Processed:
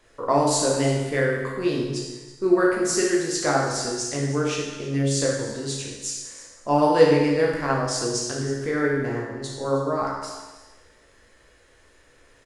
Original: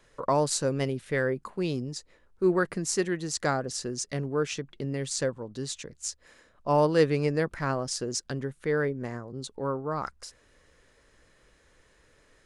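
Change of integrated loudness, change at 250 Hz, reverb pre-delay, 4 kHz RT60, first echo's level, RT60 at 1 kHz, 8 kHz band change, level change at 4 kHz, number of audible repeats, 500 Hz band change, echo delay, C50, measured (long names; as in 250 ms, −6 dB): +6.0 dB, +7.0 dB, 15 ms, 1.2 s, −16.0 dB, 1.2 s, +6.5 dB, +6.5 dB, 1, +6.0 dB, 322 ms, 1.0 dB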